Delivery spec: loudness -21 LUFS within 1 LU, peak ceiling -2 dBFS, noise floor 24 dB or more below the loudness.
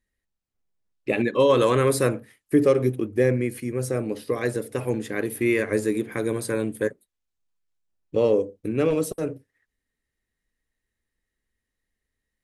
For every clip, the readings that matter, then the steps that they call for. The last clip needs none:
loudness -24.0 LUFS; peak -8.5 dBFS; loudness target -21.0 LUFS
-> gain +3 dB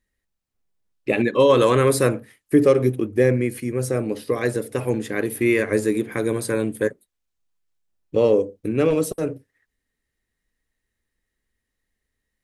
loudness -21.0 LUFS; peak -5.5 dBFS; noise floor -81 dBFS

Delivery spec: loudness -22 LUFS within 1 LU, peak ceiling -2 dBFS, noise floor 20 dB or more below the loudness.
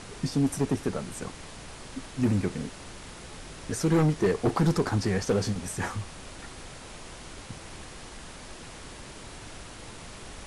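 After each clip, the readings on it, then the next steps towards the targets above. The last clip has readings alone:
clipped 1.0%; flat tops at -18.0 dBFS; noise floor -44 dBFS; noise floor target -48 dBFS; loudness -28.0 LUFS; peak -18.0 dBFS; loudness target -22.0 LUFS
-> clip repair -18 dBFS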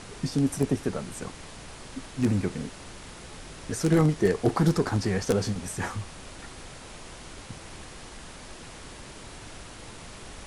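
clipped 0.0%; noise floor -44 dBFS; noise floor target -48 dBFS
-> noise print and reduce 6 dB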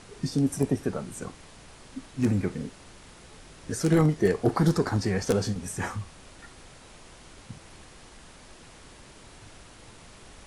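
noise floor -50 dBFS; loudness -27.0 LUFS; peak -9.0 dBFS; loudness target -22.0 LUFS
-> gain +5 dB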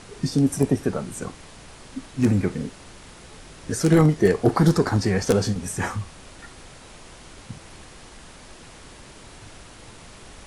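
loudness -22.0 LUFS; peak -4.0 dBFS; noise floor -45 dBFS

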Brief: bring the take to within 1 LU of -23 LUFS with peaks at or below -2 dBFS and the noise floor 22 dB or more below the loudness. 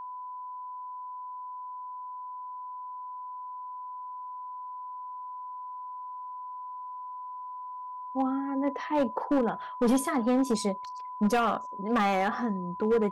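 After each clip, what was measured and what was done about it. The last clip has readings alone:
clipped 1.0%; flat tops at -19.5 dBFS; steady tone 1000 Hz; tone level -37 dBFS; loudness -32.0 LUFS; peak -19.5 dBFS; loudness target -23.0 LUFS
-> clip repair -19.5 dBFS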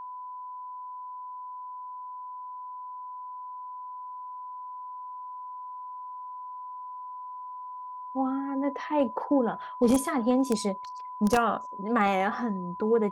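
clipped 0.0%; steady tone 1000 Hz; tone level -37 dBFS
-> notch 1000 Hz, Q 30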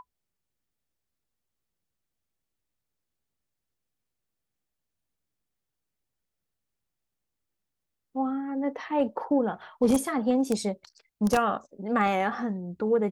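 steady tone none; loudness -27.5 LUFS; peak -10.5 dBFS; loudness target -23.0 LUFS
-> gain +4.5 dB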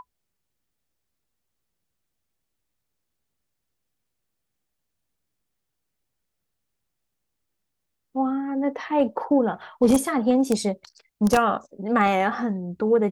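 loudness -23.0 LUFS; peak -6.0 dBFS; noise floor -80 dBFS

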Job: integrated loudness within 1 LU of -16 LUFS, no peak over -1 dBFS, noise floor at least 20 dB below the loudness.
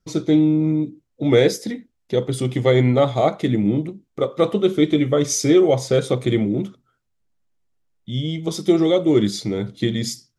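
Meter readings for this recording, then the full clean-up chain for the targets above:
loudness -19.5 LUFS; peak -2.5 dBFS; loudness target -16.0 LUFS
-> gain +3.5 dB; limiter -1 dBFS

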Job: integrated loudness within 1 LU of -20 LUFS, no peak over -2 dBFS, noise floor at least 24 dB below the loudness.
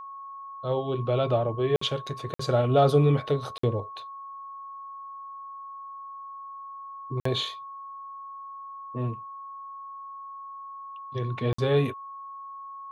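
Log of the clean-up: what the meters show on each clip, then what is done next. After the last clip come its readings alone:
dropouts 5; longest dropout 54 ms; steady tone 1100 Hz; tone level -38 dBFS; loudness -27.0 LUFS; peak -9.5 dBFS; loudness target -20.0 LUFS
-> interpolate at 1.76/2.34/3.58/7.2/11.53, 54 ms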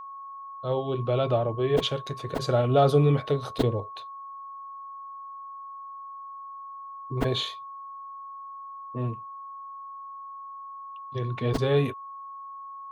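dropouts 0; steady tone 1100 Hz; tone level -38 dBFS
-> notch 1100 Hz, Q 30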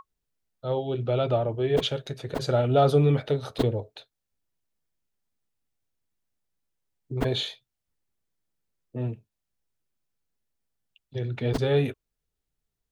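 steady tone none; loudness -26.5 LUFS; peak -9.5 dBFS; loudness target -20.0 LUFS
-> gain +6.5 dB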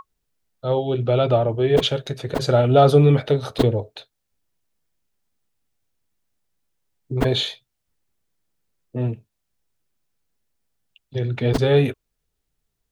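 loudness -20.0 LUFS; peak -3.0 dBFS; noise floor -77 dBFS

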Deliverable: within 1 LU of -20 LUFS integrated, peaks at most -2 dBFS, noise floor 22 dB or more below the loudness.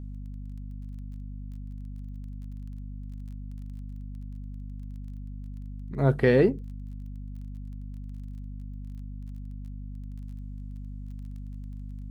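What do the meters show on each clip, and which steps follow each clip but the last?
ticks 21/s; hum 50 Hz; harmonics up to 250 Hz; hum level -36 dBFS; loudness -34.0 LUFS; peak -7.5 dBFS; loudness target -20.0 LUFS
-> de-click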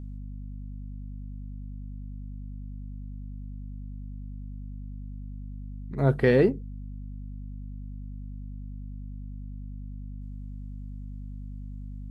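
ticks 0/s; hum 50 Hz; harmonics up to 250 Hz; hum level -36 dBFS
-> notches 50/100/150/200/250 Hz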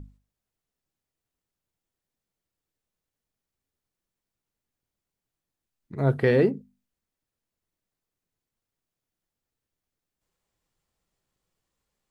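hum none; loudness -23.5 LUFS; peak -8.5 dBFS; loudness target -20.0 LUFS
-> gain +3.5 dB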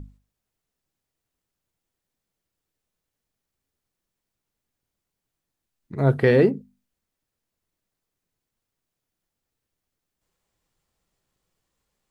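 loudness -20.0 LUFS; peak -5.0 dBFS; noise floor -84 dBFS

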